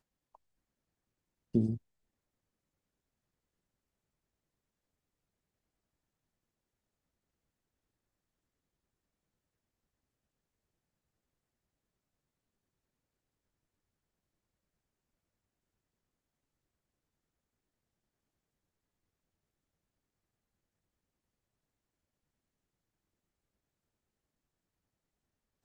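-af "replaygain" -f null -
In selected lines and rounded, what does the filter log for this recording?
track_gain = +64.0 dB
track_peak = 0.119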